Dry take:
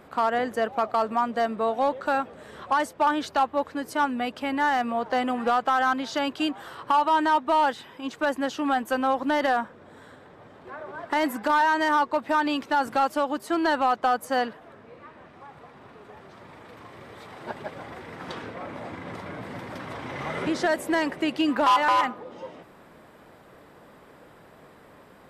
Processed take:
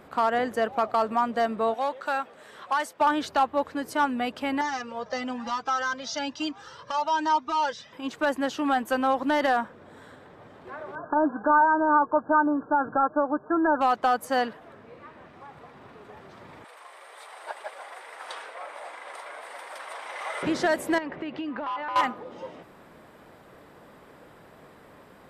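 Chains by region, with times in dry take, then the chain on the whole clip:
1.74–3.01 s: high-pass 130 Hz 6 dB/octave + bass shelf 500 Hz -11.5 dB
4.61–7.93 s: resonant low-pass 5.8 kHz, resonance Q 5.3 + comb of notches 370 Hz + Shepard-style flanger rising 1.1 Hz
10.95–13.81 s: brick-wall FIR low-pass 1.7 kHz + comb 6.6 ms, depth 32%
16.64–20.43 s: high-pass 580 Hz 24 dB/octave + peaking EQ 9 kHz +14.5 dB 0.28 oct
20.98–21.96 s: low-pass 2.7 kHz + compression, threshold -30 dBFS
whole clip: none

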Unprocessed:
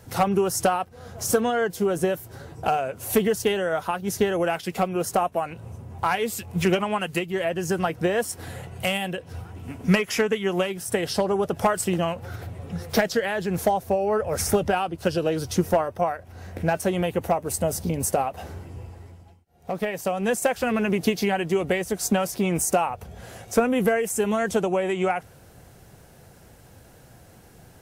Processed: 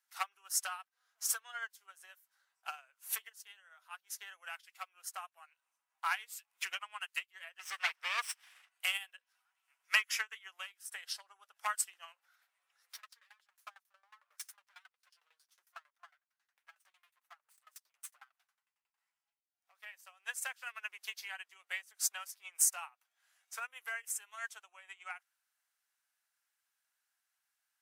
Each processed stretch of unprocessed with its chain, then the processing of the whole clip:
3.29–3.91 s: compression 1.5:1, threshold -33 dBFS + de-hum 106 Hz, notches 14
7.59–8.69 s: comb filter that takes the minimum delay 0.37 ms + overdrive pedal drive 16 dB, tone 3.8 kHz, clips at -12 dBFS
12.94–18.98 s: comb filter that takes the minimum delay 8.5 ms + sawtooth tremolo in dB decaying 11 Hz, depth 21 dB
whole clip: high-pass 1.2 kHz 24 dB/octave; upward expansion 2.5:1, over -41 dBFS

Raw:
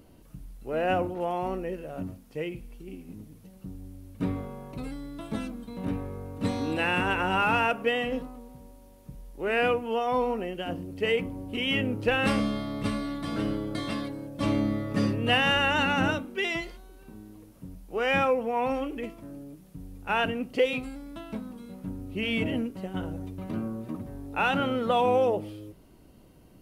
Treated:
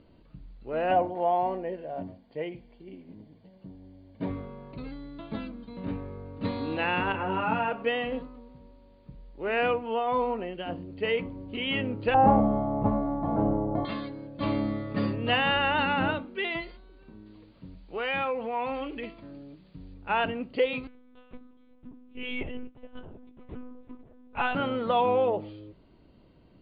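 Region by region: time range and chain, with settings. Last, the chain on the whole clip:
0.91–4.30 s: peaking EQ 690 Hz +7.5 dB 0.53 oct + comb of notches 1.3 kHz
7.12–7.72 s: high-pass 110 Hz 24 dB/octave + tilt EQ -2.5 dB/octave + detune thickener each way 10 cents
12.14–13.85 s: CVSD coder 64 kbps + resonant low-pass 800 Hz, resonance Q 5.8 + bass shelf 270 Hz +8.5 dB
17.26–19.94 s: treble shelf 2.1 kHz +9.5 dB + compression 2:1, threshold -29 dBFS
20.87–24.55 s: peaking EQ 68 Hz -12 dB 0.8 oct + monotone LPC vocoder at 8 kHz 250 Hz + upward expansion, over -43 dBFS
whole clip: Chebyshev low-pass 4.7 kHz, order 10; band-stop 760 Hz, Q 22; dynamic bell 900 Hz, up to +4 dB, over -39 dBFS, Q 1.3; trim -2 dB

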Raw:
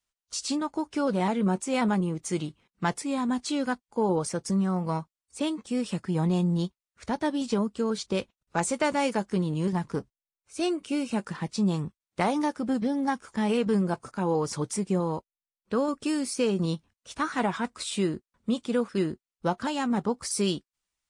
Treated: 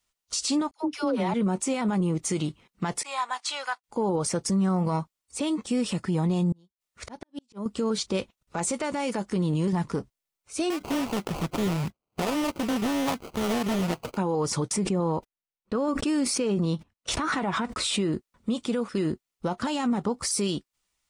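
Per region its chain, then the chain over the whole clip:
0.71–1.34 s: peaking EQ 7.8 kHz -14.5 dB 0.28 oct + phase dispersion lows, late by 86 ms, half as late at 520 Hz + three bands expanded up and down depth 100%
3.03–3.84 s: expander -42 dBFS + high-pass 800 Hz 24 dB/octave + treble shelf 5.7 kHz -7.5 dB
6.52–7.66 s: slow attack 500 ms + inverted gate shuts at -31 dBFS, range -38 dB
10.70–14.17 s: compression 2.5:1, threshold -33 dBFS + sample-rate reducer 1.8 kHz + loudspeaker Doppler distortion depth 0.84 ms
14.68–18.13 s: gate -50 dBFS, range -47 dB + treble shelf 4.3 kHz -8.5 dB + swell ahead of each attack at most 64 dB/s
whole clip: band-stop 1.6 kHz, Q 14; compression, threshold -26 dBFS; peak limiter -26 dBFS; trim +7.5 dB

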